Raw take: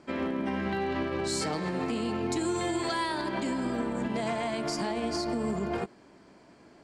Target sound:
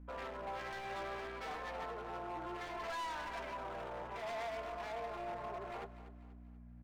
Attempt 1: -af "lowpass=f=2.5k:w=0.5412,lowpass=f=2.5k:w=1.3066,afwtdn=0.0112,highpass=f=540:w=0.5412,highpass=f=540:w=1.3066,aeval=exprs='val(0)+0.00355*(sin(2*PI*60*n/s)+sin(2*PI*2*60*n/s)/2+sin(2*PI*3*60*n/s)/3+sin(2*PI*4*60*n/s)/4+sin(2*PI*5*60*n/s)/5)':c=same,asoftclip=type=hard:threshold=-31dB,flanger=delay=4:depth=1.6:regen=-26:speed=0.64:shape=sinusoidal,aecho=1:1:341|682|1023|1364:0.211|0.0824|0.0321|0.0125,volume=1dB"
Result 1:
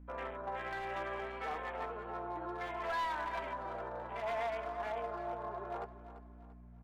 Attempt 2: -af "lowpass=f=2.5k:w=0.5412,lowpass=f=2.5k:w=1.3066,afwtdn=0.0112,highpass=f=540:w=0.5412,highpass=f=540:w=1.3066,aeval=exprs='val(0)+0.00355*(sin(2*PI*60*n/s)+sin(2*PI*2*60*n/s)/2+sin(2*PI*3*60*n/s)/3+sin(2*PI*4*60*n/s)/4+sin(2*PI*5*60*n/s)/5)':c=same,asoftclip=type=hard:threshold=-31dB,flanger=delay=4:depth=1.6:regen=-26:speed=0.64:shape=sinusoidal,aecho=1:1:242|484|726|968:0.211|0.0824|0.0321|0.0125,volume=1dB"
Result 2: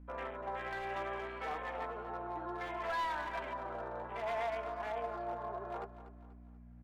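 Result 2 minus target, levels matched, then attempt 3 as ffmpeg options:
hard clip: distortion -8 dB
-af "lowpass=f=2.5k:w=0.5412,lowpass=f=2.5k:w=1.3066,afwtdn=0.0112,highpass=f=540:w=0.5412,highpass=f=540:w=1.3066,aeval=exprs='val(0)+0.00355*(sin(2*PI*60*n/s)+sin(2*PI*2*60*n/s)/2+sin(2*PI*3*60*n/s)/3+sin(2*PI*4*60*n/s)/4+sin(2*PI*5*60*n/s)/5)':c=same,asoftclip=type=hard:threshold=-38dB,flanger=delay=4:depth=1.6:regen=-26:speed=0.64:shape=sinusoidal,aecho=1:1:242|484|726|968:0.211|0.0824|0.0321|0.0125,volume=1dB"

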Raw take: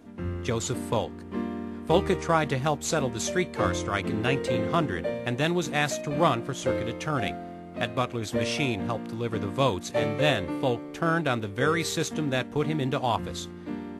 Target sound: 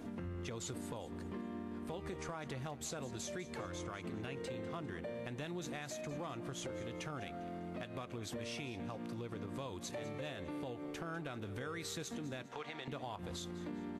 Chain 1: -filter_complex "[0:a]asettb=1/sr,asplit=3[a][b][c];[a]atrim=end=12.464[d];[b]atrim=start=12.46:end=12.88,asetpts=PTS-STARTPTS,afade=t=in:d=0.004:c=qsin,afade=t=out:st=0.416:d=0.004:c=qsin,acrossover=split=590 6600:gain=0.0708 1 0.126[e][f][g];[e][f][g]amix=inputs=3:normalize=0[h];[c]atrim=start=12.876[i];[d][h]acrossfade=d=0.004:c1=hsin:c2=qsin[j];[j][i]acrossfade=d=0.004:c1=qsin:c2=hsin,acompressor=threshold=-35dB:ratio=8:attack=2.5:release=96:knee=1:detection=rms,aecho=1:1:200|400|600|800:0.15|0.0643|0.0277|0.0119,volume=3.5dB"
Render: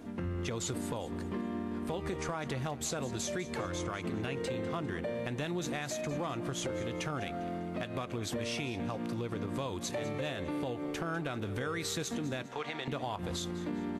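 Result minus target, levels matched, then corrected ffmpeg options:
compressor: peak gain reduction -7.5 dB
-filter_complex "[0:a]asettb=1/sr,asplit=3[a][b][c];[a]atrim=end=12.464[d];[b]atrim=start=12.46:end=12.88,asetpts=PTS-STARTPTS,afade=t=in:d=0.004:c=qsin,afade=t=out:st=0.416:d=0.004:c=qsin,acrossover=split=590 6600:gain=0.0708 1 0.126[e][f][g];[e][f][g]amix=inputs=3:normalize=0[h];[c]atrim=start=12.876[i];[d][h]acrossfade=d=0.004:c1=hsin:c2=qsin[j];[j][i]acrossfade=d=0.004:c1=qsin:c2=hsin,acompressor=threshold=-43.5dB:ratio=8:attack=2.5:release=96:knee=1:detection=rms,aecho=1:1:200|400|600|800:0.15|0.0643|0.0277|0.0119,volume=3.5dB"

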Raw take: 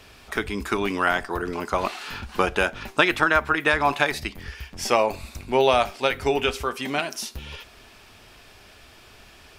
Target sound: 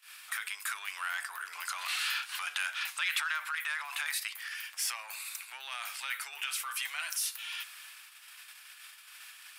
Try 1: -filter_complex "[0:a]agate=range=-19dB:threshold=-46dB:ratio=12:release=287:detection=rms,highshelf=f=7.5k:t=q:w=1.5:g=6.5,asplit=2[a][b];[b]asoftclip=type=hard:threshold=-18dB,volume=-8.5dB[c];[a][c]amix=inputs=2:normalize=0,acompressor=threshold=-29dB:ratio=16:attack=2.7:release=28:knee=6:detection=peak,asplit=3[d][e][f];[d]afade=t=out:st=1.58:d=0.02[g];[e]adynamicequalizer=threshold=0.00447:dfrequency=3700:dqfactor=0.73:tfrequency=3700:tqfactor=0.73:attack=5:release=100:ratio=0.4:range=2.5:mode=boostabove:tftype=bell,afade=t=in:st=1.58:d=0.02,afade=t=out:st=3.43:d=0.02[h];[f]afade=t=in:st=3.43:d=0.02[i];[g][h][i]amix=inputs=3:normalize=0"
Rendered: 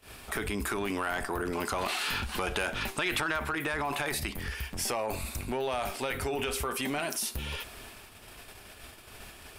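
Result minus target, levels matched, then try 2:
1000 Hz band +4.0 dB; hard clip: distortion -6 dB
-filter_complex "[0:a]agate=range=-19dB:threshold=-46dB:ratio=12:release=287:detection=rms,highshelf=f=7.5k:t=q:w=1.5:g=6.5,asplit=2[a][b];[b]asoftclip=type=hard:threshold=-28dB,volume=-8.5dB[c];[a][c]amix=inputs=2:normalize=0,acompressor=threshold=-29dB:ratio=16:attack=2.7:release=28:knee=6:detection=peak,highpass=f=1.3k:w=0.5412,highpass=f=1.3k:w=1.3066,asplit=3[d][e][f];[d]afade=t=out:st=1.58:d=0.02[g];[e]adynamicequalizer=threshold=0.00447:dfrequency=3700:dqfactor=0.73:tfrequency=3700:tqfactor=0.73:attack=5:release=100:ratio=0.4:range=2.5:mode=boostabove:tftype=bell,afade=t=in:st=1.58:d=0.02,afade=t=out:st=3.43:d=0.02[h];[f]afade=t=in:st=3.43:d=0.02[i];[g][h][i]amix=inputs=3:normalize=0"

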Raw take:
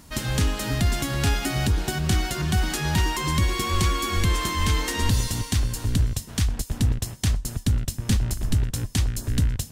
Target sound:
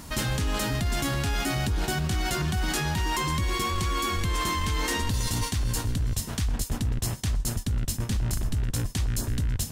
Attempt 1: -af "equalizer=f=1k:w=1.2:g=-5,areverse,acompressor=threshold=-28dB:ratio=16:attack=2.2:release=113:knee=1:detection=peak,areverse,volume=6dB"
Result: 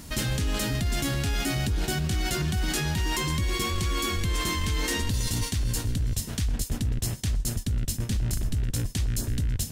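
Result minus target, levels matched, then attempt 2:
1000 Hz band -5.0 dB
-af "equalizer=f=1k:w=1.2:g=2,areverse,acompressor=threshold=-28dB:ratio=16:attack=2.2:release=113:knee=1:detection=peak,areverse,volume=6dB"

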